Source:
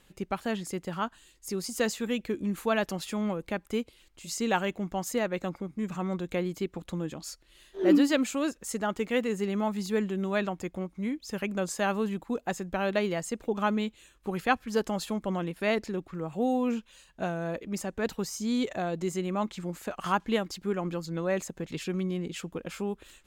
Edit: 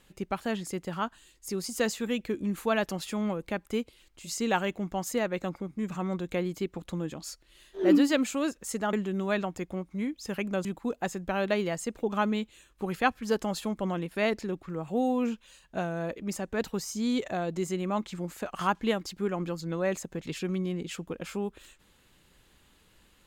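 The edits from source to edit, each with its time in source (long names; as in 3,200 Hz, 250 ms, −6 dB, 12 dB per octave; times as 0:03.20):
0:08.93–0:09.97: remove
0:11.69–0:12.10: remove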